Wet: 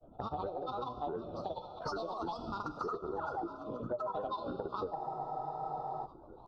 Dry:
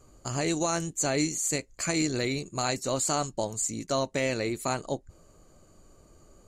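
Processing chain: octaver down 1 oct, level -2 dB; vocal tract filter e; grains, pitch spread up and down by 12 st; painted sound fall, 3.16–3.37, 300–2000 Hz -42 dBFS; elliptic band-stop 1300–2800 Hz, stop band 40 dB; non-linear reverb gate 0.42 s falling, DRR 10 dB; compressor 6:1, threshold -52 dBFS, peak gain reduction 19 dB; formant shift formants +4 st; echo 0.952 s -16 dB; spectral freeze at 4.98, 1.08 s; gain +16 dB

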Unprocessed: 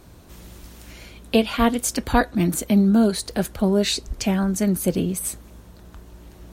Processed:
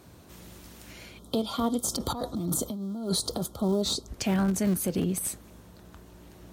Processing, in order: in parallel at -9 dB: Schmitt trigger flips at -17 dBFS; 1.86–3.43 on the sum: negative-ratio compressor -26 dBFS, ratio -1; 1.19–4.08 spectral gain 1400–3100 Hz -19 dB; limiter -15 dBFS, peak gain reduction 9.5 dB; HPF 82 Hz 12 dB/oct; gain -3 dB

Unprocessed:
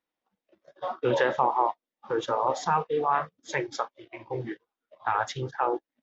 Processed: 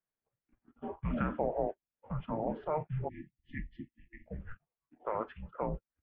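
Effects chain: mistuned SSB -320 Hz 190–2700 Hz; spectral delete 3.08–4.27, 350–1700 Hz; gain -8.5 dB

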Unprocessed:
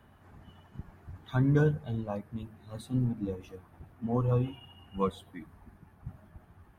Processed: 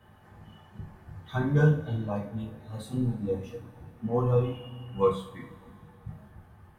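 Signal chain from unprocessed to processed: two-slope reverb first 0.37 s, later 2.8 s, from -22 dB, DRR -5 dB; gain -3 dB

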